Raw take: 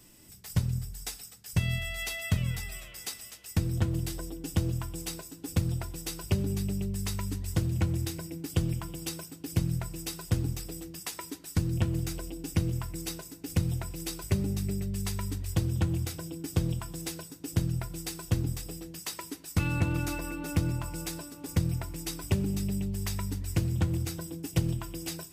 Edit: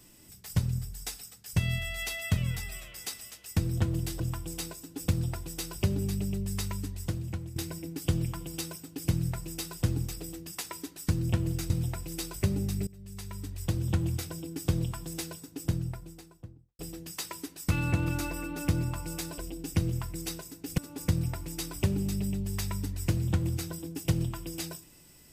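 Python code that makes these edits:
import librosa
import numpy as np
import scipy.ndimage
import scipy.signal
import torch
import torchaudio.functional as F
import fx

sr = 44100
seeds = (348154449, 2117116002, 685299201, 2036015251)

y = fx.studio_fade_out(x, sr, start_s=17.2, length_s=1.47)
y = fx.edit(y, sr, fx.cut(start_s=4.2, length_s=0.48),
    fx.fade_out_to(start_s=7.08, length_s=0.96, floor_db=-13.0),
    fx.move(start_s=12.18, length_s=1.4, to_s=21.26),
    fx.fade_in_from(start_s=14.75, length_s=1.08, floor_db=-22.0), tone=tone)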